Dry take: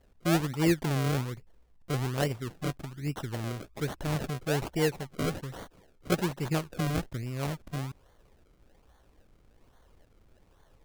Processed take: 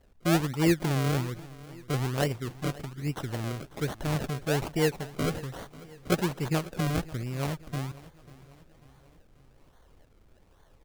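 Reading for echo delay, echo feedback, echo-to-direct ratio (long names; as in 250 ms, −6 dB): 542 ms, 50%, −18.5 dB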